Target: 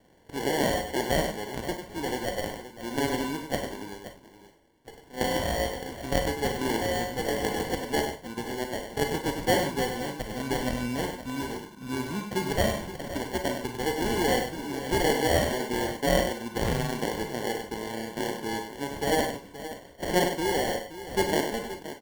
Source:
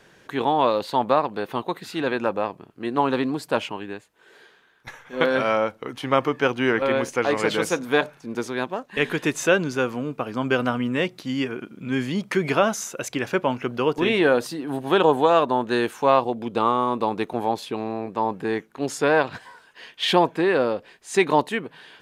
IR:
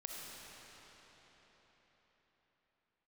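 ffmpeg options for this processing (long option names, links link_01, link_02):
-filter_complex "[0:a]asettb=1/sr,asplit=3[link_01][link_02][link_03];[link_01]atrim=end=8.524[link_04];[link_02]atrim=start=8.52:end=9.97,asetpts=PTS-STARTPTS,afade=type=in:duration=0.004:curve=qsin,afade=type=out:start_time=1.446:duration=0.004:curve=qsin,equalizer=frequency=470:width_type=o:width=0.77:gain=3.5[link_05];[link_03]atrim=start=9.966[link_06];[link_04][link_05]acrossfade=duration=0.004:curve1=hsin:curve2=qsin[link_07];[link_07][link_06]acrossfade=duration=0.004:curve1=qsin:curve2=hsin,acrusher=samples=35:mix=1:aa=0.000001,aecho=1:1:98|524:0.422|0.224[link_08];[1:a]atrim=start_sample=2205,atrim=end_sample=4410,asetrate=70560,aresample=44100[link_09];[link_08][link_09]afir=irnorm=-1:irlink=0,volume=2dB"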